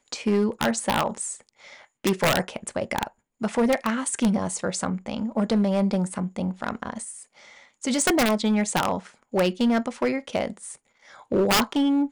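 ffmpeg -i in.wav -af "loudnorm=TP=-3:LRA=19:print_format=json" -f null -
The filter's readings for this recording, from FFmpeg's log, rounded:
"input_i" : "-24.7",
"input_tp" : "-11.2",
"input_lra" : "2.1",
"input_thresh" : "-35.3",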